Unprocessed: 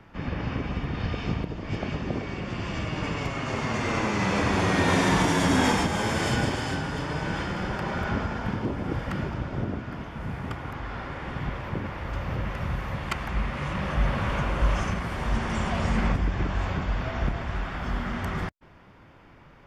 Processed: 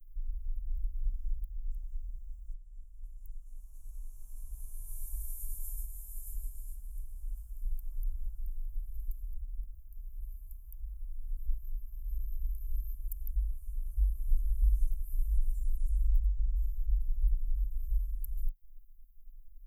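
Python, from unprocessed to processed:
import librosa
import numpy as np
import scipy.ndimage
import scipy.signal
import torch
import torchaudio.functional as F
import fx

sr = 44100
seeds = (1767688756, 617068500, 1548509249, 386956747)

y = fx.edit(x, sr, fx.fade_in_from(start_s=2.54, length_s=3.17, curve='qsin', floor_db=-14.5), tone=tone)
y = scipy.signal.sosfilt(scipy.signal.cheby2(4, 70, [120.0, 4700.0], 'bandstop', fs=sr, output='sos'), y)
y = y * 10.0 ** (18.0 / 20.0)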